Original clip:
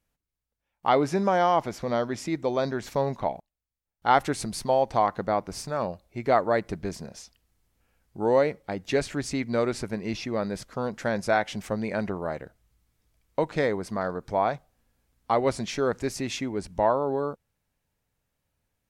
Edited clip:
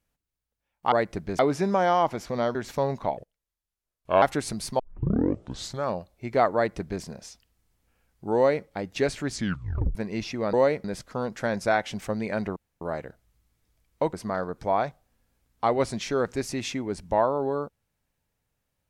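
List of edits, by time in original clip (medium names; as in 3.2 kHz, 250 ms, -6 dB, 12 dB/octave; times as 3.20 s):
2.08–2.73 s: delete
3.35–4.15 s: speed 76%
4.72 s: tape start 1.07 s
6.48–6.95 s: copy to 0.92 s
8.28–8.59 s: copy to 10.46 s
9.24 s: tape stop 0.64 s
12.18 s: insert room tone 0.25 s
13.50–13.80 s: delete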